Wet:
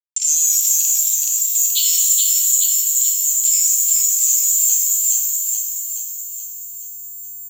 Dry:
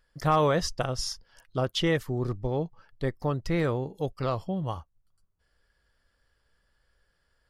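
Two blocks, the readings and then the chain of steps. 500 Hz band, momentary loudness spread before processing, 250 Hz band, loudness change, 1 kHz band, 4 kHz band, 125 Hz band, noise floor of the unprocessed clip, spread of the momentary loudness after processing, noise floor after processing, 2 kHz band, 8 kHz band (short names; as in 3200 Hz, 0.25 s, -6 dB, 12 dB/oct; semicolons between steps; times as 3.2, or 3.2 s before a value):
under -40 dB, 10 LU, under -40 dB, +16.0 dB, under -40 dB, +10.5 dB, under -40 dB, -73 dBFS, 15 LU, -33 dBFS, n/a, +34.0 dB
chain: level-crossing sampler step -37.5 dBFS; reverb removal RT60 1.6 s; careless resampling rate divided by 6×, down filtered, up zero stuff; differentiator; compressor 6:1, threshold -25 dBFS, peak gain reduction 17.5 dB; steep high-pass 2300 Hz 72 dB/oct; downsampling 16000 Hz; feedback echo 0.426 s, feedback 56%, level -3 dB; maximiser +29 dB; shimmer reverb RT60 1.6 s, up +12 st, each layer -2 dB, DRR 1 dB; gain -7 dB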